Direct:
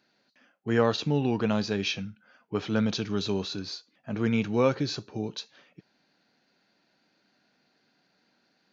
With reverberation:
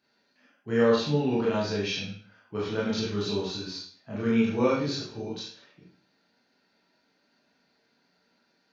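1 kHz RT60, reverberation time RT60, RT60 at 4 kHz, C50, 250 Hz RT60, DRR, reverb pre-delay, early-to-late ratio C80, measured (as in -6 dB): 0.50 s, 0.50 s, 0.45 s, 2.0 dB, 0.45 s, -7.0 dB, 22 ms, 6.5 dB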